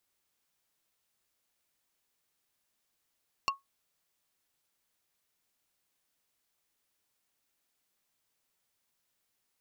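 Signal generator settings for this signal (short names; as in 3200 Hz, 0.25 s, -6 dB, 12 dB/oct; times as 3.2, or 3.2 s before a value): wood hit plate, lowest mode 1100 Hz, decay 0.16 s, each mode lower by 2.5 dB, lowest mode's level -22.5 dB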